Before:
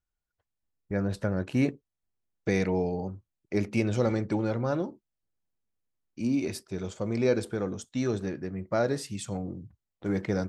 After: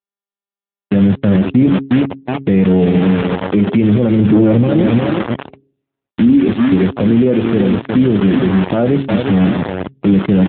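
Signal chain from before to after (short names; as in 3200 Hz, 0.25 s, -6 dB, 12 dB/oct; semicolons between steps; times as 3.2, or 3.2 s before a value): 4.19–4.64 sample leveller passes 3; bell 210 Hz +11.5 dB 2 oct; feedback echo 0.359 s, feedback 36%, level -10.5 dB; bit-crush 5-bit; HPF 48 Hz 12 dB/oct; de-hum 136.1 Hz, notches 3; maximiser +16.5 dB; gain -2 dB; AMR-NB 7.4 kbps 8000 Hz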